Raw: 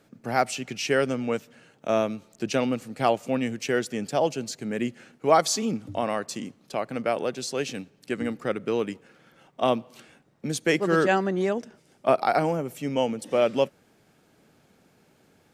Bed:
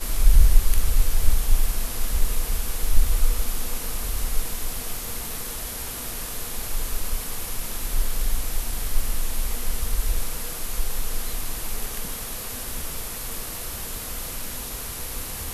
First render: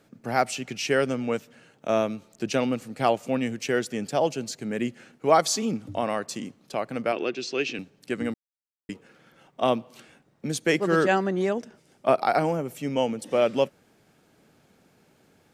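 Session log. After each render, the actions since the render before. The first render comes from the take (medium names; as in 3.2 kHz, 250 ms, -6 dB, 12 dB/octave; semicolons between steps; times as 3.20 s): 7.12–7.79 s: cabinet simulation 160–5800 Hz, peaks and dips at 170 Hz -7 dB, 350 Hz +8 dB, 550 Hz -6 dB, 860 Hz -6 dB, 2.6 kHz +9 dB; 8.34–8.89 s: mute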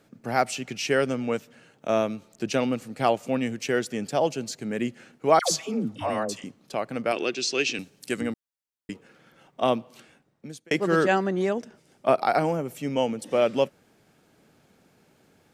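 5.39–6.44 s: phase dispersion lows, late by 124 ms, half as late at 800 Hz; 7.11–8.21 s: peaking EQ 11 kHz +13.5 dB 2.2 oct; 9.61–10.71 s: fade out equal-power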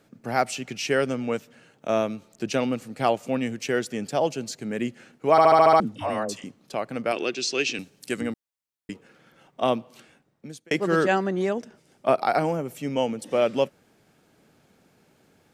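5.31 s: stutter in place 0.07 s, 7 plays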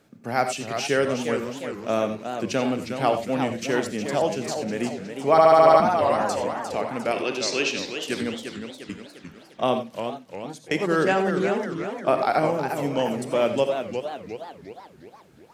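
gated-style reverb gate 110 ms rising, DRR 8 dB; modulated delay 356 ms, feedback 51%, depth 216 cents, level -7.5 dB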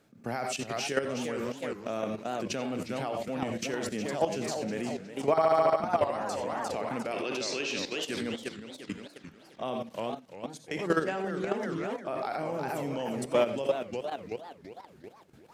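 peak limiter -14 dBFS, peak gain reduction 10 dB; level held to a coarse grid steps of 11 dB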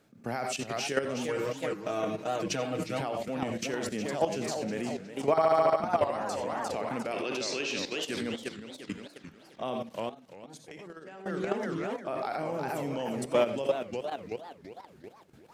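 1.28–3.01 s: comb 6.4 ms, depth 88%; 10.09–11.26 s: compression 10:1, threshold -42 dBFS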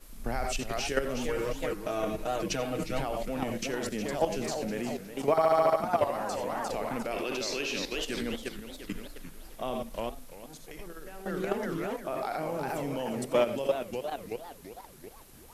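add bed -23 dB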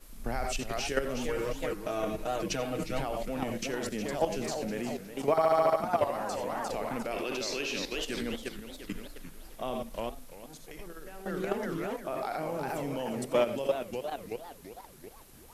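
trim -1 dB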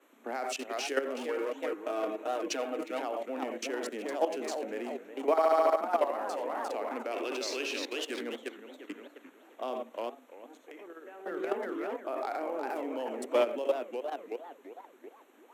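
local Wiener filter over 9 samples; steep high-pass 260 Hz 48 dB/octave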